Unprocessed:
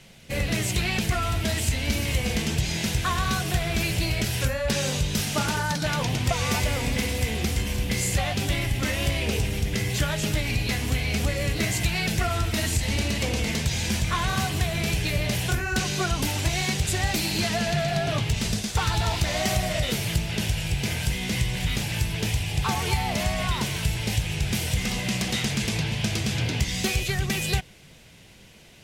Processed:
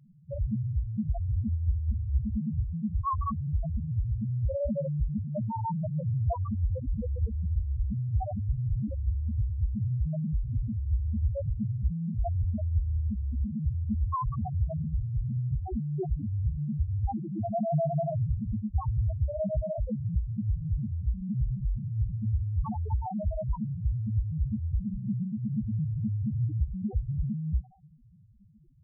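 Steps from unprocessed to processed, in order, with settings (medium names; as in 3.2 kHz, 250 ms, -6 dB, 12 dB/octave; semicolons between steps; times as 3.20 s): brick-wall FIR low-pass 1.3 kHz; thinning echo 65 ms, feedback 76%, high-pass 660 Hz, level -13 dB; loudest bins only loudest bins 1; trim +5.5 dB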